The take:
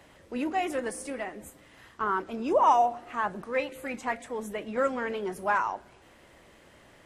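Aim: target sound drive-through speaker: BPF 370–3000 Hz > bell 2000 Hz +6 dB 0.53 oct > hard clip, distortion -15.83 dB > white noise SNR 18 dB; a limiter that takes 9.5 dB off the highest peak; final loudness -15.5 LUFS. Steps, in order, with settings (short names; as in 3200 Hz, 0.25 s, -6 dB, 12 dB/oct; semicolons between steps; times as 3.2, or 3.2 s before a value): limiter -21 dBFS; BPF 370–3000 Hz; bell 2000 Hz +6 dB 0.53 oct; hard clip -25.5 dBFS; white noise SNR 18 dB; gain +18.5 dB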